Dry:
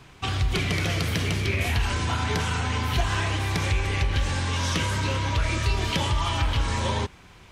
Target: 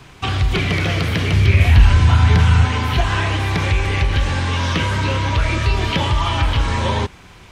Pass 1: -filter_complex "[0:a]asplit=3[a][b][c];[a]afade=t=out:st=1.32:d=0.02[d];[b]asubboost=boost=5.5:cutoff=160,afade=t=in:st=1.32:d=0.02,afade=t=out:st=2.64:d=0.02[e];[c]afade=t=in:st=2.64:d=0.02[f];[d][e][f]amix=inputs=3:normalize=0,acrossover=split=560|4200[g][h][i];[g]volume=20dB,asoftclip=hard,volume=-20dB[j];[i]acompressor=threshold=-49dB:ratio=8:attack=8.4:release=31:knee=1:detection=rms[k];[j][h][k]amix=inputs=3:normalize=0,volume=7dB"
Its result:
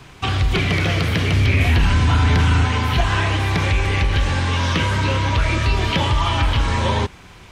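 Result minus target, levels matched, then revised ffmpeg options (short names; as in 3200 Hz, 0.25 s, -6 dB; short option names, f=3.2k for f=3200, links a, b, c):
overloaded stage: distortion +16 dB
-filter_complex "[0:a]asplit=3[a][b][c];[a]afade=t=out:st=1.32:d=0.02[d];[b]asubboost=boost=5.5:cutoff=160,afade=t=in:st=1.32:d=0.02,afade=t=out:st=2.64:d=0.02[e];[c]afade=t=in:st=2.64:d=0.02[f];[d][e][f]amix=inputs=3:normalize=0,acrossover=split=560|4200[g][h][i];[g]volume=10.5dB,asoftclip=hard,volume=-10.5dB[j];[i]acompressor=threshold=-49dB:ratio=8:attack=8.4:release=31:knee=1:detection=rms[k];[j][h][k]amix=inputs=3:normalize=0,volume=7dB"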